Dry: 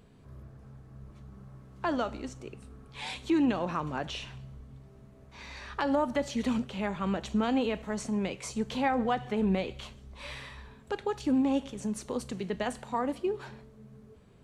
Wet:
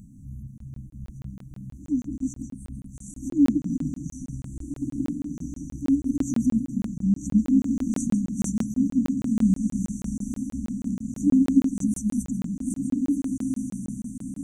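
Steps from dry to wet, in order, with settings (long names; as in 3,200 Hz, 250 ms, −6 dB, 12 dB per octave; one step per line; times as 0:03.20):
peak hold with a rise ahead of every peak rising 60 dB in 0.30 s
on a send at −4.5 dB: convolution reverb RT60 1.0 s, pre-delay 100 ms
on the sum: reverb reduction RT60 0.72 s
parametric band 200 Hz +2.5 dB 0.46 octaves
in parallel at +0.5 dB: downward compressor, threshold −40 dBFS, peak gain reduction 18 dB
on the sum: linear-phase brick-wall band-stop 310–5,800 Hz
feedback delay with all-pass diffusion 1,625 ms, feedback 41%, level −6 dB
dynamic equaliser 290 Hz, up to +5 dB, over −40 dBFS, Q 5.2
regular buffer underruns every 0.16 s, samples 1,024, zero, from 0:00.58
level +4 dB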